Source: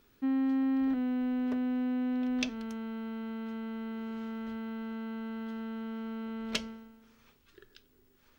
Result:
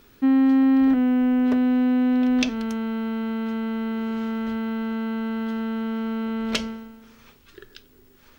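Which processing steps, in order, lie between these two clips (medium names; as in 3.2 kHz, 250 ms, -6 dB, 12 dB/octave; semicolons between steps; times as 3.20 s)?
0.90–1.44 s: peaking EQ 4 kHz -6.5 dB -> -13 dB 0.29 oct; loudness maximiser +19.5 dB; trim -8 dB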